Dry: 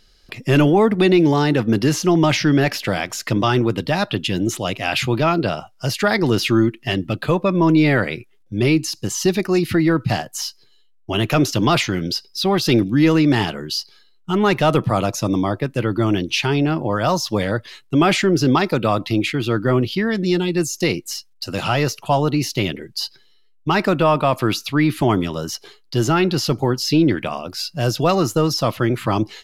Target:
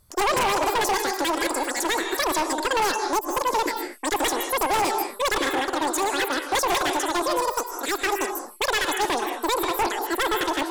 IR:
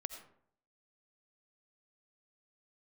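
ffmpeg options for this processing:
-filter_complex "[0:a]asetrate=121275,aresample=44100[a];[1:a]atrim=start_sample=2205,atrim=end_sample=6174,asetrate=24696,aresample=44100[b];[a][b]afir=irnorm=-1:irlink=0,aeval=exprs='0.282*(abs(mod(val(0)/0.282+3,4)-2)-1)':c=same,volume=-5.5dB"

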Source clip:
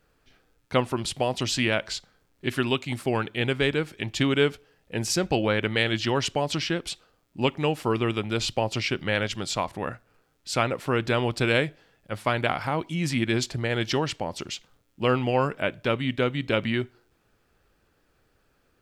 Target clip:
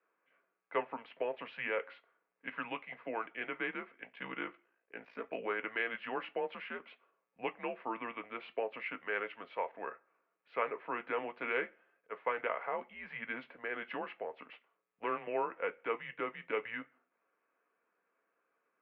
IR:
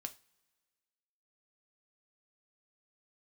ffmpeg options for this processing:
-filter_complex "[0:a]asettb=1/sr,asplit=3[a][b][c];[a]atrim=end=3.934[d];[b]atrim=start=3.93:end=5.45,asetpts=PTS-STARTPTS,afade=t=in:d=0.004:c=qsin,afade=t=out:st=1.516:d=0.004:c=qsin,aeval=exprs='val(0)*sin(2*PI*28*n/s)':c=same[e];[c]atrim=start=5.446[f];[d][e]acrossfade=d=0.004:c1=hsin:c2=qsin[g];[g][f]acrossfade=d=0.004:c1=qsin:c2=hsin[h];[1:a]atrim=start_sample=2205,afade=t=out:st=0.45:d=0.01,atrim=end_sample=20286,asetrate=88200,aresample=44100[i];[h][i]afir=irnorm=-1:irlink=0,asettb=1/sr,asplit=3[j][k][l];[j]atrim=end=14.524[m];[k]atrim=start=14.52:end=15.27,asetpts=PTS-STARTPTS,afade=t=in:d=0.004:c=qsin,afade=t=out:st=0.746:d=0.004:c=qsin,aeval=exprs='0.1*(cos(1*acos(clip(val(0)/0.1,-1,1)))-cos(1*PI/2))+0.00562*(cos(3*acos(clip(val(0)/0.1,-1,1)))-cos(3*PI/2))+0.00794*(cos(4*acos(clip(val(0)/0.1,-1,1)))-cos(4*PI/2))+0.00355*(cos(8*acos(clip(val(0)/0.1,-1,1)))-cos(8*PI/2))':c=same[n];[l]atrim=start=15.266[o];[m][n]acrossfade=d=0.004:c1=hsin:c2=qsin[p];[p][o]acrossfade=d=0.004:c1=qsin:c2=hsin,highpass=f=520:t=q:w=0.5412,highpass=f=520:t=q:w=1.307,lowpass=f=2.5k:t=q:w=0.5176,lowpass=f=2.5k:t=q:w=0.7071,lowpass=f=2.5k:t=q:w=1.932,afreqshift=-110,volume=1dB"

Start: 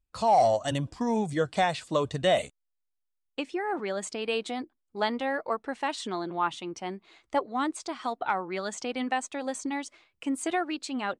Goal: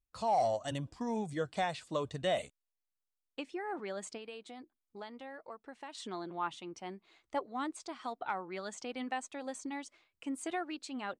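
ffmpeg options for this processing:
-filter_complex "[0:a]asettb=1/sr,asplit=3[a][b][c];[a]atrim=end=4.174[d];[b]atrim=start=4.17:end=5.95,asetpts=PTS-STARTPTS,afade=t=in:d=0.004:c=qsin,afade=t=out:st=1.776:d=0.004:c=qsin,acompressor=threshold=-38dB:ratio=3[e];[c]atrim=start=5.946[f];[d][e]acrossfade=d=0.004:c1=hsin:c2=qsin[g];[g][f]acrossfade=d=0.004:c1=qsin:c2=hsin,volume=-8.5dB"

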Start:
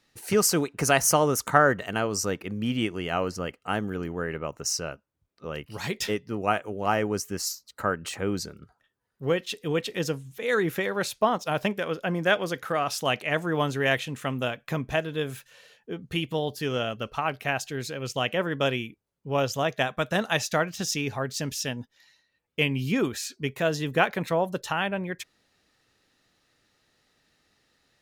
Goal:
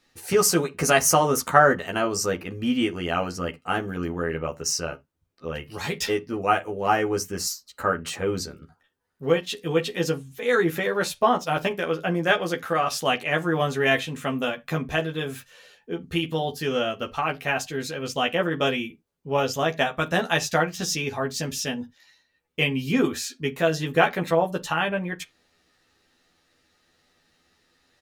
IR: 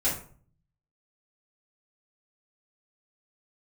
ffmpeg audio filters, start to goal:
-filter_complex "[0:a]asplit=2[a][b];[b]adelay=12,volume=-2.5dB[c];[a][c]amix=inputs=2:normalize=0,asplit=2[d][e];[e]lowpass=8k[f];[1:a]atrim=start_sample=2205,atrim=end_sample=6174,asetrate=70560,aresample=44100[g];[f][g]afir=irnorm=-1:irlink=0,volume=-18dB[h];[d][h]amix=inputs=2:normalize=0"

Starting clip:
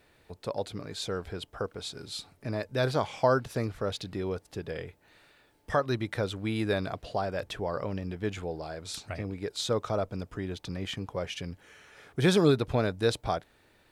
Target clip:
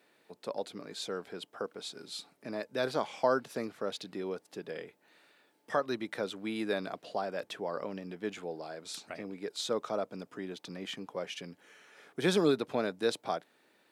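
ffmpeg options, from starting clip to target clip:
-af "highpass=f=190:w=0.5412,highpass=f=190:w=1.3066,volume=-3.5dB"

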